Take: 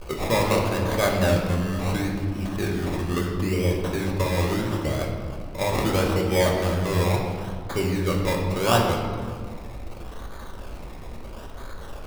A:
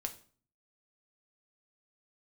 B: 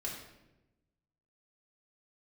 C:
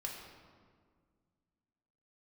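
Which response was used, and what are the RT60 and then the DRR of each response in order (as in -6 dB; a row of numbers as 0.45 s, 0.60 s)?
C; 0.45 s, 1.0 s, 1.8 s; 5.0 dB, -4.5 dB, -1.5 dB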